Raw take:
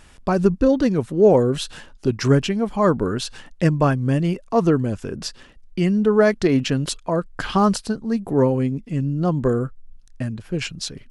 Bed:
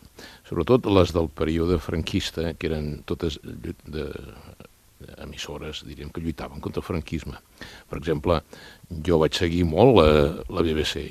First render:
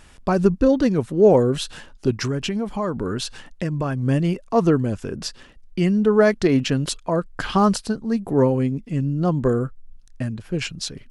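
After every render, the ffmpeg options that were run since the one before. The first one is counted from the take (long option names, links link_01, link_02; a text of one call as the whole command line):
ffmpeg -i in.wav -filter_complex "[0:a]asettb=1/sr,asplit=3[link_01][link_02][link_03];[link_01]atrim=end=2.144[link_04];[link_02]atrim=start=2.14:end=4.03,asetpts=PTS-STARTPTS,afade=type=in:duration=0.004:curve=qsin,afade=type=out:start_time=1.886:duration=0.004:curve=qsin,acompressor=threshold=-20dB:ratio=6:attack=3.2:release=140:knee=1:detection=peak[link_05];[link_03]atrim=start=4.026[link_06];[link_04][link_05]acrossfade=duration=0.004:curve1=hsin:curve2=qsin[link_07];[link_07][link_06]acrossfade=duration=0.004:curve1=qsin:curve2=hsin" out.wav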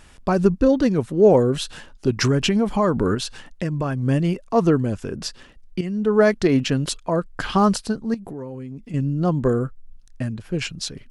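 ffmpeg -i in.wav -filter_complex "[0:a]asettb=1/sr,asplit=3[link_01][link_02][link_03];[link_01]atrim=end=8.144[link_04];[link_02]atrim=start=8.14:end=8.94,asetpts=PTS-STARTPTS,afade=type=in:duration=0.004:curve=qsin,afade=type=out:start_time=0.796:duration=0.004:curve=qsin,acompressor=threshold=-31dB:ratio=5:attack=3.2:release=140:knee=1:detection=peak[link_05];[link_03]atrim=start=8.936[link_06];[link_04][link_05]acrossfade=duration=0.004:curve1=hsin:curve2=qsin[link_07];[link_07][link_06]acrossfade=duration=0.004:curve1=qsin:curve2=hsin,asplit=4[link_08][link_09][link_10][link_11];[link_08]atrim=end=2.172[link_12];[link_09]atrim=start=2.168:end=3.152,asetpts=PTS-STARTPTS,volume=5.5dB[link_13];[link_10]atrim=start=3.148:end=5.81,asetpts=PTS-STARTPTS,afade=type=out:start_time=2.658:duration=0.004:curve=hsin:silence=0.237137[link_14];[link_11]atrim=start=5.81,asetpts=PTS-STARTPTS,afade=type=in:duration=0.4:silence=0.237137[link_15];[link_12][link_13]acrossfade=duration=0.004:curve1=hsin:curve2=hsin[link_16];[link_14][link_15]concat=n=2:v=0:a=1[link_17];[link_16][link_17]acrossfade=duration=0.004:curve1=hsin:curve2=hsin" out.wav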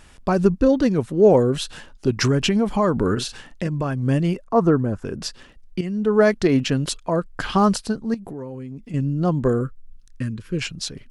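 ffmpeg -i in.wav -filter_complex "[0:a]asettb=1/sr,asplit=3[link_01][link_02][link_03];[link_01]atrim=end=3.134[link_04];[link_02]atrim=start=3.13:end=3.68,asetpts=PTS-STARTPTS,afade=type=in:duration=0.004:curve=qsin,afade=type=out:start_time=0.546:duration=0.004:curve=qsin,asplit=2[link_05][link_06];[link_06]adelay=41,volume=-8dB[link_07];[link_05][link_07]amix=inputs=2:normalize=0,atrim=end_sample=24255[link_08];[link_03]atrim=start=3.676[link_09];[link_04][link_08]acrossfade=duration=0.004:curve1=hsin:curve2=qsin[link_10];[link_10][link_09]acrossfade=duration=0.004:curve1=qsin:curve2=hsin,asettb=1/sr,asplit=3[link_11][link_12][link_13];[link_11]atrim=end=4.424[link_14];[link_12]atrim=start=4.42:end=5.05,asetpts=PTS-STARTPTS,afade=type=in:duration=0.004:curve=qsin,afade=type=out:start_time=0.626:duration=0.004:curve=qsin,highshelf=frequency=1900:width_type=q:width=1.5:gain=-9[link_15];[link_13]atrim=start=5.046[link_16];[link_14][link_15]acrossfade=duration=0.004:curve1=hsin:curve2=qsin[link_17];[link_17][link_16]acrossfade=duration=0.004:curve1=qsin:curve2=hsin,asettb=1/sr,asplit=3[link_18][link_19][link_20];[link_18]atrim=end=9.614[link_21];[link_19]atrim=start=9.61:end=10.59,asetpts=PTS-STARTPTS,afade=type=in:duration=0.004:curve=qsin,afade=type=out:start_time=0.976:duration=0.004:curve=qsin,asuperstop=centerf=720:order=4:qfactor=1.5[link_22];[link_20]atrim=start=10.586[link_23];[link_21][link_22]acrossfade=duration=0.004:curve1=hsin:curve2=qsin[link_24];[link_24][link_23]acrossfade=duration=0.004:curve1=qsin:curve2=hsin" out.wav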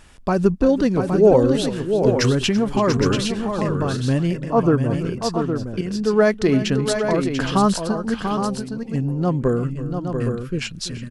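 ffmpeg -i in.wav -af "aecho=1:1:335|690|816:0.168|0.447|0.422" out.wav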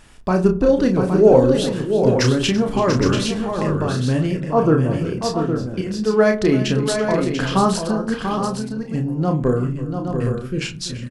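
ffmpeg -i in.wav -filter_complex "[0:a]asplit=2[link_01][link_02];[link_02]adelay=32,volume=-5.5dB[link_03];[link_01][link_03]amix=inputs=2:normalize=0,asplit=2[link_04][link_05];[link_05]adelay=60,lowpass=frequency=820:poles=1,volume=-10.5dB,asplit=2[link_06][link_07];[link_07]adelay=60,lowpass=frequency=820:poles=1,volume=0.49,asplit=2[link_08][link_09];[link_09]adelay=60,lowpass=frequency=820:poles=1,volume=0.49,asplit=2[link_10][link_11];[link_11]adelay=60,lowpass=frequency=820:poles=1,volume=0.49,asplit=2[link_12][link_13];[link_13]adelay=60,lowpass=frequency=820:poles=1,volume=0.49[link_14];[link_06][link_08][link_10][link_12][link_14]amix=inputs=5:normalize=0[link_15];[link_04][link_15]amix=inputs=2:normalize=0" out.wav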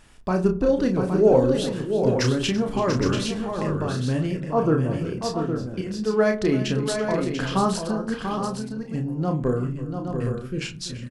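ffmpeg -i in.wav -af "volume=-5dB" out.wav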